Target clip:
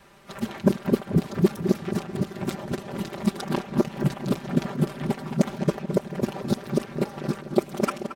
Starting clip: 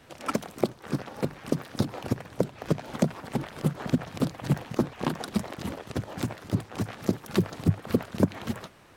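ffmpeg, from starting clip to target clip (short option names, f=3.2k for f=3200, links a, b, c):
-filter_complex "[0:a]areverse,aecho=1:1:5.1:0.72,asplit=2[a][b];[b]adelay=240,lowpass=f=2k:p=1,volume=-9dB,asplit=2[c][d];[d]adelay=240,lowpass=f=2k:p=1,volume=0.54,asplit=2[e][f];[f]adelay=240,lowpass=f=2k:p=1,volume=0.54,asplit=2[g][h];[h]adelay=240,lowpass=f=2k:p=1,volume=0.54,asplit=2[i][j];[j]adelay=240,lowpass=f=2k:p=1,volume=0.54,asplit=2[k][l];[l]adelay=240,lowpass=f=2k:p=1,volume=0.54[m];[c][e][g][i][k][m]amix=inputs=6:normalize=0[n];[a][n]amix=inputs=2:normalize=0,adynamicequalizer=threshold=0.00891:dfrequency=330:dqfactor=3.3:tfrequency=330:tqfactor=3.3:attack=5:release=100:ratio=0.375:range=2:mode=boostabove:tftype=bell,atempo=1.1"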